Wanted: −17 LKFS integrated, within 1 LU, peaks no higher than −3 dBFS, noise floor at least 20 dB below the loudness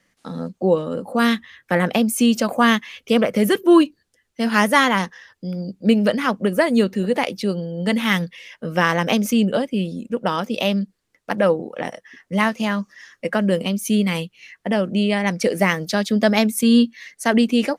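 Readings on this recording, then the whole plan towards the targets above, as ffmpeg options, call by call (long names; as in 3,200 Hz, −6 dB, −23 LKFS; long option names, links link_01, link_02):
integrated loudness −19.5 LKFS; sample peak −1.0 dBFS; target loudness −17.0 LKFS
→ -af "volume=2.5dB,alimiter=limit=-3dB:level=0:latency=1"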